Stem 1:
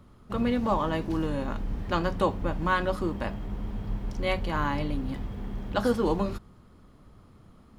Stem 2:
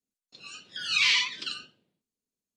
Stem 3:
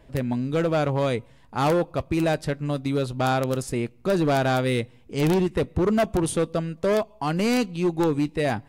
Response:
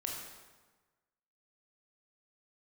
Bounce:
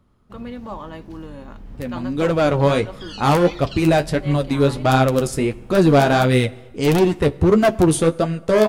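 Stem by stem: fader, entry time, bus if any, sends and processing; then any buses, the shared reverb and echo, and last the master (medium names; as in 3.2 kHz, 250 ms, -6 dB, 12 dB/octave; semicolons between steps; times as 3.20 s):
-6.5 dB, 0.00 s, no send, none
-8.0 dB, 2.25 s, no send, compressor with a negative ratio -31 dBFS, ratio -1
0.0 dB, 1.65 s, send -19 dB, level rider gain up to 9.5 dB; flange 1.5 Hz, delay 6.8 ms, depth 7.8 ms, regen +33%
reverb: on, RT60 1.3 s, pre-delay 18 ms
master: none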